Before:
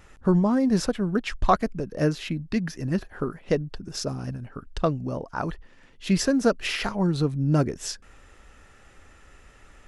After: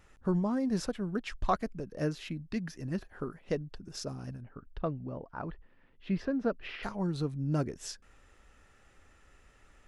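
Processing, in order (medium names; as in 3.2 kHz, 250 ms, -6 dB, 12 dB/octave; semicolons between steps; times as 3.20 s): 4.41–6.83 s: distance through air 350 m; trim -9 dB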